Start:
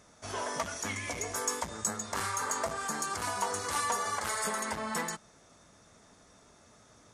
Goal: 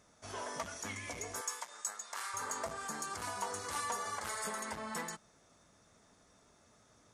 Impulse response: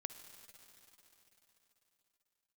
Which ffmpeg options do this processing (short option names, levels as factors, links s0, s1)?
-filter_complex "[0:a]asettb=1/sr,asplit=3[s0][s1][s2];[s0]atrim=end=1.414[s3];[s1]atrim=start=1.41:end=2.34,asetpts=PTS-STARTPTS,afade=t=in:d=0.004:c=qsin,afade=t=out:st=0.926:d=0.004:c=qsin,highpass=860[s4];[s2]atrim=start=2.336[s5];[s3][s4]acrossfade=d=0.004:c1=hsin:c2=qsin[s6];[s6][s5]acrossfade=d=0.004:c1=qsin:c2=hsin,volume=0.473"